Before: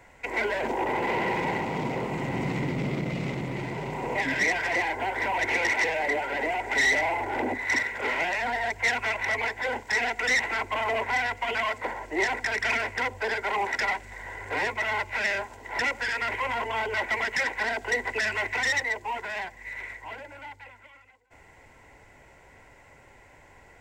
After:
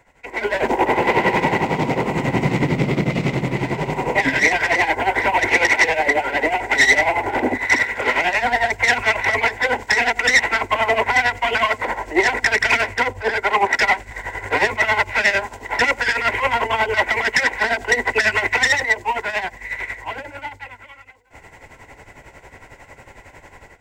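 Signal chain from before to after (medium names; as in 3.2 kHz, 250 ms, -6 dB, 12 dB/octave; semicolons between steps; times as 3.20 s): tremolo 11 Hz, depth 71%; level rider gain up to 13.5 dB; 12.63–14.11 s: three bands expanded up and down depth 70%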